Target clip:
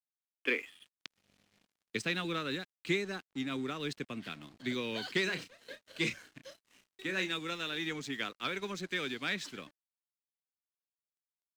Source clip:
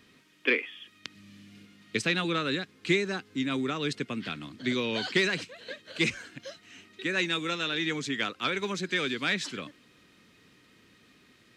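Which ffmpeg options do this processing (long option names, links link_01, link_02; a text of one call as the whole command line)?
ffmpeg -i in.wav -filter_complex "[0:a]aeval=exprs='sgn(val(0))*max(abs(val(0))-0.00355,0)':channel_layout=same,asettb=1/sr,asplit=3[link_01][link_02][link_03];[link_01]atrim=end=5.244[link_04];[link_02]atrim=start=5.24:end=7.33,asetpts=PTS-STARTPTS,afade=type=in:duration=0.004:curve=qsin,afade=type=out:start_time=2.086:duration=0.004:curve=qsin,asplit=2[link_05][link_06];[link_06]adelay=32,volume=-8dB[link_07];[link_05][link_07]amix=inputs=2:normalize=0,atrim=end_sample=92169[link_08];[link_03]atrim=start=7.326[link_09];[link_04][link_08]acrossfade=duration=0.004:curve1=hsin:curve2=qsin[link_10];[link_10][link_09]acrossfade=duration=0.004:curve1=qsin:curve2=hsin,volume=-6dB" out.wav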